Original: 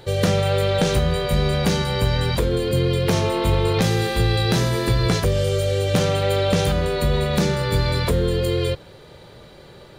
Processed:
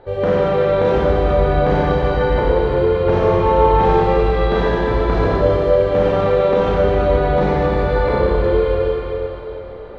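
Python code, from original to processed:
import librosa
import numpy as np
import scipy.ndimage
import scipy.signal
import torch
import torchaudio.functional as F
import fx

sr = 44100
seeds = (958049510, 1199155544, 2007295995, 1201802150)

y = scipy.signal.sosfilt(scipy.signal.butter(2, 1100.0, 'lowpass', fs=sr, output='sos'), x)
y = fx.peak_eq(y, sr, hz=140.0, db=-14.5, octaves=1.7)
y = fx.rev_schroeder(y, sr, rt60_s=3.3, comb_ms=30, drr_db=-7.5)
y = y * librosa.db_to_amplitude(3.5)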